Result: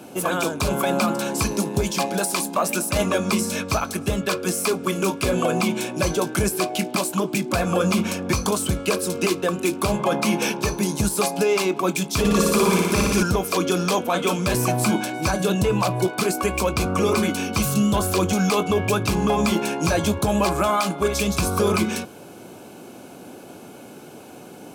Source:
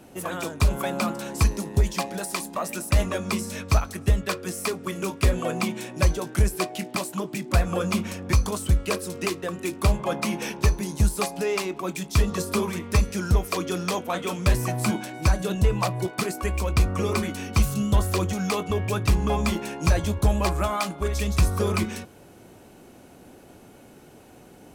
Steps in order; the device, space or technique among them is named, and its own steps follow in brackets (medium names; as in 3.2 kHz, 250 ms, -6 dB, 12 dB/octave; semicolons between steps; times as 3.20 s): PA system with an anti-feedback notch (high-pass 150 Hz 12 dB/octave; Butterworth band-stop 1.9 kHz, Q 7.2; peak limiter -19.5 dBFS, peak gain reduction 9 dB); 12.19–13.23 s: flutter echo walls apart 10 m, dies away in 1.4 s; trim +8.5 dB